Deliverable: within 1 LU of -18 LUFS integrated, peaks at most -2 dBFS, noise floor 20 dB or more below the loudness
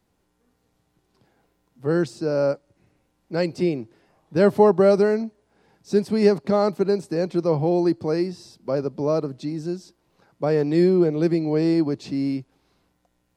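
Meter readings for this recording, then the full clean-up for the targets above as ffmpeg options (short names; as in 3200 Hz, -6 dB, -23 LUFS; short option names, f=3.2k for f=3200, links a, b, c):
loudness -22.0 LUFS; peak -3.5 dBFS; loudness target -18.0 LUFS
-> -af "volume=4dB,alimiter=limit=-2dB:level=0:latency=1"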